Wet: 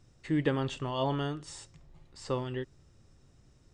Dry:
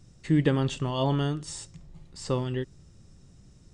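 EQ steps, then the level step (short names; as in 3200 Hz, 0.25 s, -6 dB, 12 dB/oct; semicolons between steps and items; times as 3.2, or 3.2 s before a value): bell 180 Hz -9.5 dB 0.28 oct; low shelf 420 Hz -7 dB; high shelf 4000 Hz -10 dB; 0.0 dB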